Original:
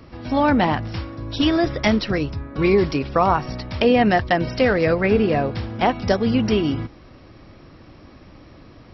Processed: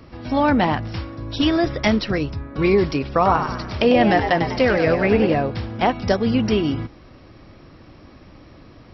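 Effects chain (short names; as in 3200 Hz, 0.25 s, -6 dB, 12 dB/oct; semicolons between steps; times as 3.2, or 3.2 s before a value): 3.12–5.34 frequency-shifting echo 98 ms, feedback 46%, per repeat +93 Hz, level -8 dB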